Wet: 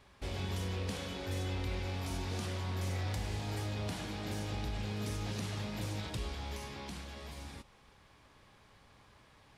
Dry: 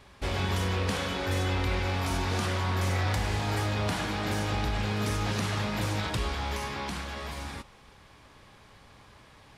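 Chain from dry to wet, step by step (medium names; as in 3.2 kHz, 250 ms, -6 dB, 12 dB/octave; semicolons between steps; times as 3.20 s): dynamic bell 1.3 kHz, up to -7 dB, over -48 dBFS, Q 0.82; trim -7.5 dB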